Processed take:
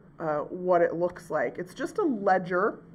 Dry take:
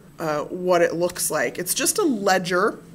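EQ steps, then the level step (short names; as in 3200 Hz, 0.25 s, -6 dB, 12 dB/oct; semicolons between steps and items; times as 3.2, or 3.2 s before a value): dynamic EQ 710 Hz, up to +4 dB, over -30 dBFS, Q 2.1; polynomial smoothing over 41 samples; -6.0 dB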